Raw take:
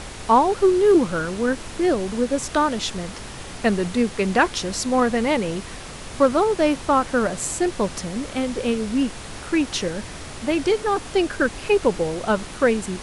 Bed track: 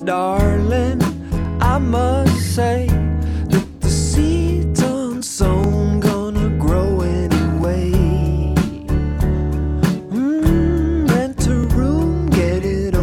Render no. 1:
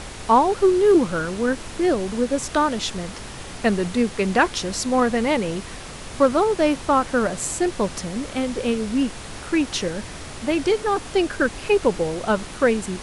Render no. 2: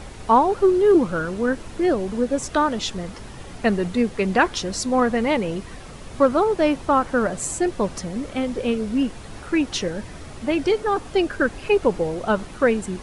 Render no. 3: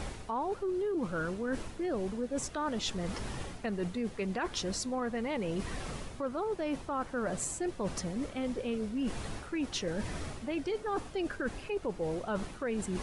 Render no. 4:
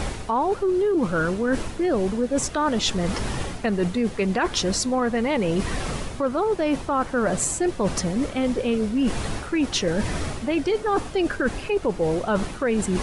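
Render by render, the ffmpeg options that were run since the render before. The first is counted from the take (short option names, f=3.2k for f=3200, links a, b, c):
-af anull
-af "afftdn=nr=8:nf=-36"
-af "alimiter=limit=-14dB:level=0:latency=1:release=140,areverse,acompressor=threshold=-32dB:ratio=6,areverse"
-af "volume=11.5dB"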